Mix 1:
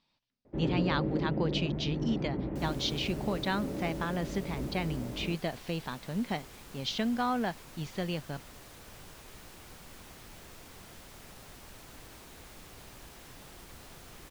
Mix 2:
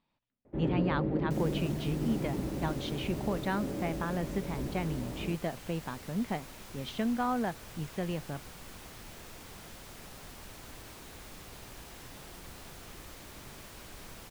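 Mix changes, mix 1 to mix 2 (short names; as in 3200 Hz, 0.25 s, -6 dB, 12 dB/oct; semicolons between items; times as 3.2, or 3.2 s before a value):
speech: add bell 5000 Hz -14 dB 1.4 oct; second sound: entry -1.25 s; reverb: on, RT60 0.80 s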